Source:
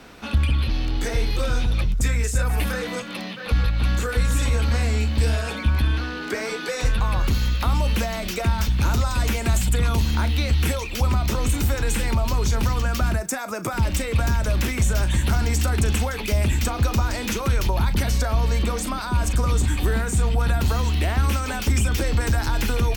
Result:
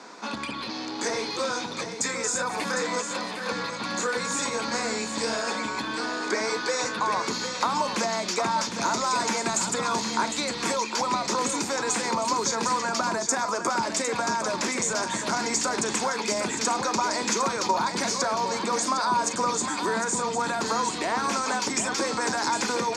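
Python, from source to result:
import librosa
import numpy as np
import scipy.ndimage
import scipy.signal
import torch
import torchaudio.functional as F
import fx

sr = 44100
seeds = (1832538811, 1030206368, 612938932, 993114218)

y = fx.cabinet(x, sr, low_hz=220.0, low_slope=24, high_hz=8400.0, hz=(260.0, 990.0, 2900.0, 4800.0, 6800.0), db=(-3, 9, -9, 6, 8))
y = y + 10.0 ** (-8.0 / 20.0) * np.pad(y, (int(756 * sr / 1000.0), 0))[:len(y)]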